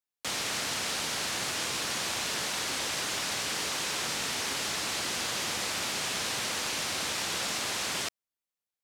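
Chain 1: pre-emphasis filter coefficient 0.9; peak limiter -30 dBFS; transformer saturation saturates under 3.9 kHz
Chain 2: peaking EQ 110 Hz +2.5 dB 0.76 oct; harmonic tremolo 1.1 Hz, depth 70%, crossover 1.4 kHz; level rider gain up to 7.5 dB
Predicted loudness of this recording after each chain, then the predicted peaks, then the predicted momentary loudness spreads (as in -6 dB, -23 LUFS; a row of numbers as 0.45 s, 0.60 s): -38.0 LUFS, -26.0 LUFS; -30.0 dBFS, -14.0 dBFS; 0 LU, 5 LU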